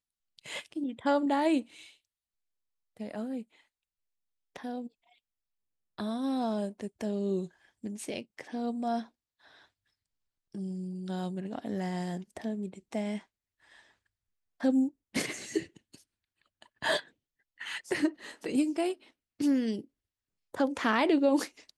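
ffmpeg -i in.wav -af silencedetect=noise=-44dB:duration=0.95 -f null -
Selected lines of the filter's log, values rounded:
silence_start: 1.87
silence_end: 2.97 | silence_duration: 1.10
silence_start: 3.43
silence_end: 4.56 | silence_duration: 1.13
silence_start: 4.87
silence_end: 5.98 | silence_duration: 1.11
silence_start: 9.05
silence_end: 10.55 | silence_duration: 1.50
silence_start: 13.19
silence_end: 14.60 | silence_duration: 1.41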